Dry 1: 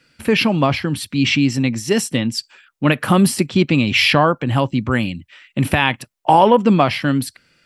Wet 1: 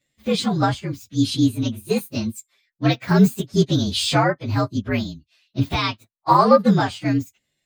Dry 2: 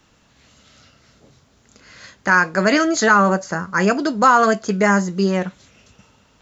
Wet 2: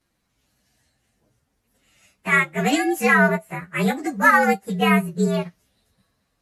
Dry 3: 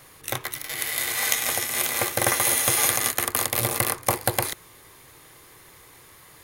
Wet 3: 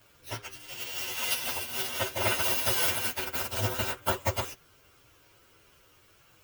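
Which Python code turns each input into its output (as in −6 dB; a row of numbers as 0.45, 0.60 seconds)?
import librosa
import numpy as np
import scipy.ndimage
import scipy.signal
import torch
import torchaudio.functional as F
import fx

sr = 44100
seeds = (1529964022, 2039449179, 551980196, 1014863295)

y = fx.partial_stretch(x, sr, pct=116)
y = fx.upward_expand(y, sr, threshold_db=-38.0, expansion=1.5)
y = y * librosa.db_to_amplitude(1.5)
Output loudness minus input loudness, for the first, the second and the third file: −3.5, −2.5, −6.0 LU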